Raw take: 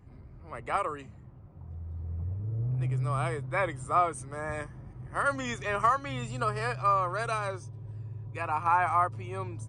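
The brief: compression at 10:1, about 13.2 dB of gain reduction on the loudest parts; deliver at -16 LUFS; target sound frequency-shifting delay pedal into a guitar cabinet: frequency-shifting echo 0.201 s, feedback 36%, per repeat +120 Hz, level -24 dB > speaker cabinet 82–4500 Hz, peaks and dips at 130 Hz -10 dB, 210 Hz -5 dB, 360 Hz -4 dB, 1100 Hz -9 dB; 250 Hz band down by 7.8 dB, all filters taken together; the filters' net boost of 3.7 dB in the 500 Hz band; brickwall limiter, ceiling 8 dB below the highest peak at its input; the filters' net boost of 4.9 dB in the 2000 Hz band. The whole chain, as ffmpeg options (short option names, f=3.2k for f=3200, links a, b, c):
-filter_complex "[0:a]equalizer=f=250:t=o:g=-8.5,equalizer=f=500:t=o:g=7,equalizer=f=2k:t=o:g=7,acompressor=threshold=-30dB:ratio=10,alimiter=level_in=3dB:limit=-24dB:level=0:latency=1,volume=-3dB,asplit=3[a][b][c];[b]adelay=201,afreqshift=120,volume=-24dB[d];[c]adelay=402,afreqshift=240,volume=-32.9dB[e];[a][d][e]amix=inputs=3:normalize=0,highpass=82,equalizer=f=130:t=q:w=4:g=-10,equalizer=f=210:t=q:w=4:g=-5,equalizer=f=360:t=q:w=4:g=-4,equalizer=f=1.1k:t=q:w=4:g=-9,lowpass=f=4.5k:w=0.5412,lowpass=f=4.5k:w=1.3066,volume=24dB"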